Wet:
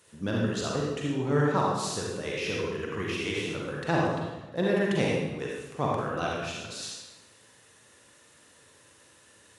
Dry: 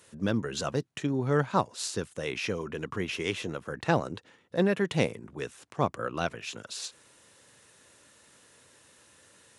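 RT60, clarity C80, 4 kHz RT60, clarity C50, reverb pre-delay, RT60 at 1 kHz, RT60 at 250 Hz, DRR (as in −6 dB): 1.2 s, 1.5 dB, 0.90 s, −1.5 dB, 37 ms, 1.1 s, 1.3 s, −3.5 dB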